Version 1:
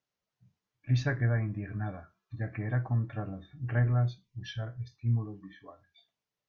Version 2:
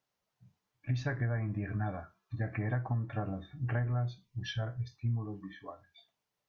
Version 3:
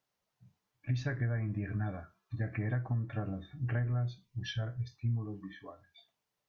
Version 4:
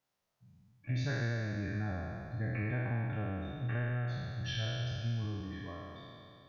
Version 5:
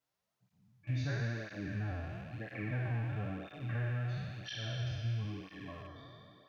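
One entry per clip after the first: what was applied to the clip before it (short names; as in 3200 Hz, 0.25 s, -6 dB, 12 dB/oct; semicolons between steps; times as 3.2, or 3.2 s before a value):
bell 850 Hz +4 dB 0.92 oct; compressor 6:1, threshold -32 dBFS, peak gain reduction 10.5 dB; gain +2.5 dB
dynamic EQ 880 Hz, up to -7 dB, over -54 dBFS, Q 1.4
spectral trails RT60 2.73 s; gain -3.5 dB
rattling part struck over -46 dBFS, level -43 dBFS; tape flanging out of phase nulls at 1 Hz, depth 5.7 ms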